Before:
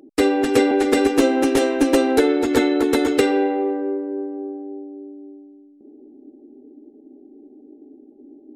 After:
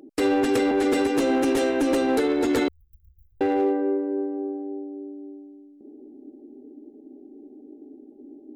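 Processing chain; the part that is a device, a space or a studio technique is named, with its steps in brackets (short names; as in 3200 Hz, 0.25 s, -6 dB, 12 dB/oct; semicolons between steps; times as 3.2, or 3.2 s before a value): limiter into clipper (limiter -13.5 dBFS, peak gain reduction 7.5 dB; hard clip -16.5 dBFS, distortion -21 dB); 2.68–3.41 inverse Chebyshev band-stop 280–8000 Hz, stop band 70 dB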